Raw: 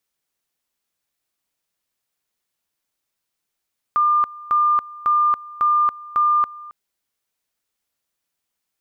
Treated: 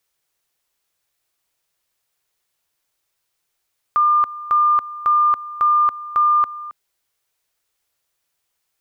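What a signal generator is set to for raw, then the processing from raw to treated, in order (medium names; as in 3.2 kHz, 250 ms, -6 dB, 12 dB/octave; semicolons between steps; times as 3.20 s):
two-level tone 1.2 kHz -13.5 dBFS, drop 20.5 dB, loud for 0.28 s, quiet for 0.27 s, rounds 5
in parallel at -1 dB: peak limiter -25 dBFS; on the sum: peaking EQ 230 Hz -13.5 dB 0.43 oct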